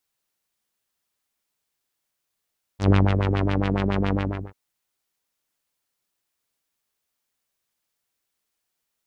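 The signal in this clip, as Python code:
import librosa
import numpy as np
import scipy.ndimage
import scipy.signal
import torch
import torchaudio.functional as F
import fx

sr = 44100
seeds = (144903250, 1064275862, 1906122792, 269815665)

y = fx.sub_patch_wobble(sr, seeds[0], note=43, wave='saw', wave2='saw', interval_st=0, level2_db=-9.0, sub_db=-15.0, noise_db=-30.0, kind='lowpass', cutoff_hz=590.0, q=1.8, env_oct=2.0, env_decay_s=0.13, env_sustain_pct=35, attack_ms=104.0, decay_s=0.26, sustain_db=-5, release_s=0.39, note_s=1.35, lfo_hz=7.2, wobble_oct=1.8)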